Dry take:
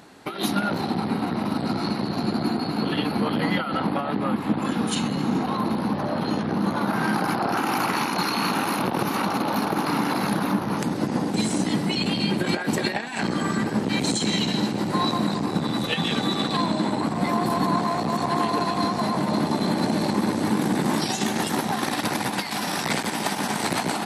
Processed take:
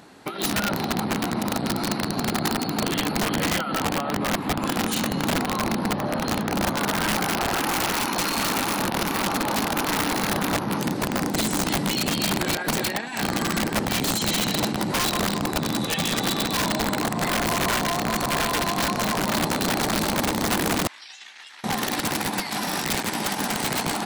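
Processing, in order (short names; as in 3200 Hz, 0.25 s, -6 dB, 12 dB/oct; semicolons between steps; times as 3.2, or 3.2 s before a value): 20.87–21.64 ladder band-pass 2900 Hz, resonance 20%; wrapped overs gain 17 dB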